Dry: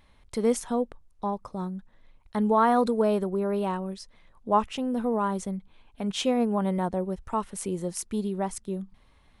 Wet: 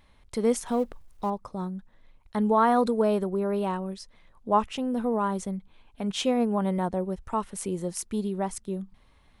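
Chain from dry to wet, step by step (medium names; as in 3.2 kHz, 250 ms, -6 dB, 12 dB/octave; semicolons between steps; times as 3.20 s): 0.66–1.30 s: companding laws mixed up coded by mu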